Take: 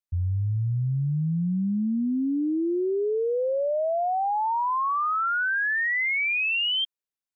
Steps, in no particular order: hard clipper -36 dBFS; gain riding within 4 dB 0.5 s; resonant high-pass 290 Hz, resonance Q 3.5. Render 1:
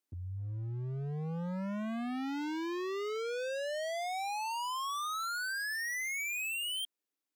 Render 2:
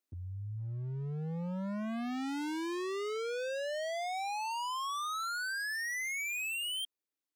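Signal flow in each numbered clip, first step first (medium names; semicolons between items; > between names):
resonant high-pass > gain riding > hard clipper; gain riding > resonant high-pass > hard clipper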